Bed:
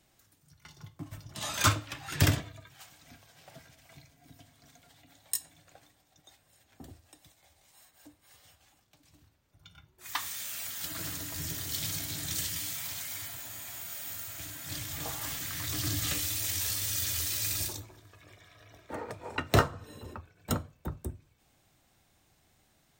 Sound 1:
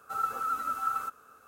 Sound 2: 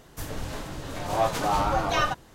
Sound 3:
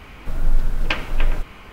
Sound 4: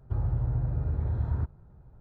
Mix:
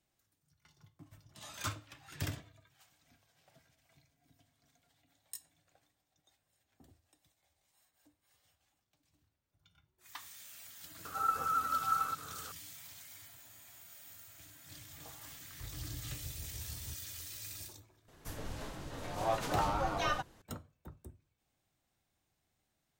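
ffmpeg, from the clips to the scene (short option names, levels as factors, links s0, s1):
-filter_complex "[0:a]volume=0.2[s0];[1:a]acompressor=mode=upward:threshold=0.00447:ratio=4:attack=47:release=47:knee=2.83:detection=peak[s1];[4:a]tremolo=f=6.4:d=0.58[s2];[s1]atrim=end=1.47,asetpts=PTS-STARTPTS,volume=0.841,afade=t=in:d=0.004:c=hsin,afade=t=out:st=1.466:d=0.004:c=hsin,adelay=11050[s3];[s2]atrim=end=2,asetpts=PTS-STARTPTS,volume=0.158,afade=t=in:d=0.004:c=hsin,afade=t=out:st=1.996:d=0.004:c=hsin,adelay=15490[s4];[2:a]atrim=end=2.34,asetpts=PTS-STARTPTS,volume=0.355,afade=t=in:d=0.004:c=hsin,afade=t=out:st=2.336:d=0.004:c=hsin,adelay=18080[s5];[s0][s3][s4][s5]amix=inputs=4:normalize=0"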